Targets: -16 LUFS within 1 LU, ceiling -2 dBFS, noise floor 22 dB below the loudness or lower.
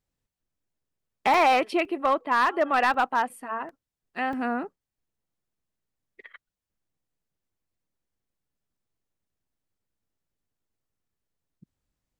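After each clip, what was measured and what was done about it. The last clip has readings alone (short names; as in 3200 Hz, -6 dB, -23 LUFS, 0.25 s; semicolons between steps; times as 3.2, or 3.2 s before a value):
clipped 0.4%; flat tops at -15.0 dBFS; dropouts 5; longest dropout 2.5 ms; loudness -24.5 LUFS; peak -15.0 dBFS; loudness target -16.0 LUFS
-> clip repair -15 dBFS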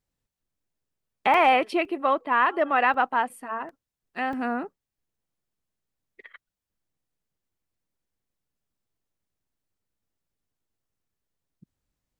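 clipped 0.0%; dropouts 5; longest dropout 2.5 ms
-> interpolate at 1.34/1.85/2.94/3.69/4.33, 2.5 ms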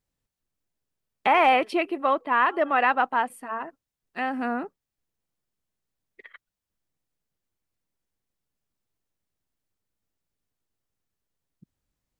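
dropouts 0; loudness -24.0 LUFS; peak -8.5 dBFS; loudness target -16.0 LUFS
-> gain +8 dB; limiter -2 dBFS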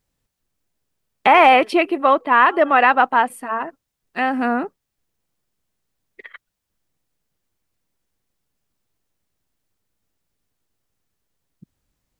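loudness -16.0 LUFS; peak -2.0 dBFS; noise floor -80 dBFS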